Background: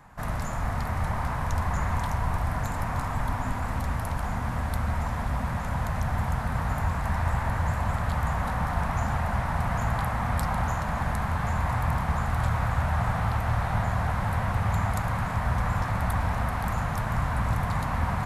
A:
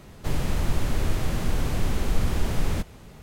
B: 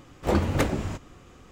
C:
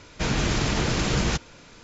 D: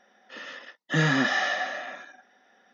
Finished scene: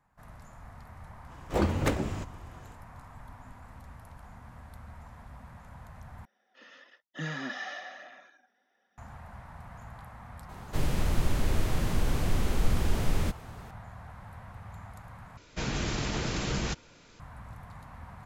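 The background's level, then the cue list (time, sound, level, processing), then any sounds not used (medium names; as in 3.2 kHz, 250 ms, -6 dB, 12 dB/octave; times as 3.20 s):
background -19.5 dB
1.27 s: add B -3.5 dB, fades 0.05 s
6.25 s: replace with D -13.5 dB + phaser 1.1 Hz, delay 4.6 ms, feedback 31%
10.49 s: add A -2.5 dB
15.37 s: replace with C -7.5 dB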